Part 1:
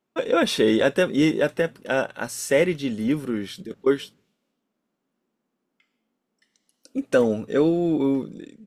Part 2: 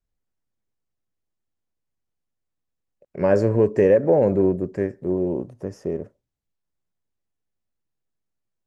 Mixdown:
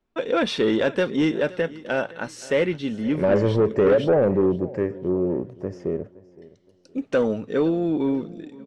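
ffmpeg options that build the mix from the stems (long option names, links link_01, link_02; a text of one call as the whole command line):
ffmpeg -i stem1.wav -i stem2.wav -filter_complex "[0:a]volume=-0.5dB,asplit=2[link_01][link_02];[link_02]volume=-21dB[link_03];[1:a]volume=1dB,asplit=2[link_04][link_05];[link_05]volume=-21dB[link_06];[link_03][link_06]amix=inputs=2:normalize=0,aecho=0:1:518|1036|1554|2072|2590:1|0.32|0.102|0.0328|0.0105[link_07];[link_01][link_04][link_07]amix=inputs=3:normalize=0,lowpass=4700,asoftclip=type=tanh:threshold=-11.5dB" out.wav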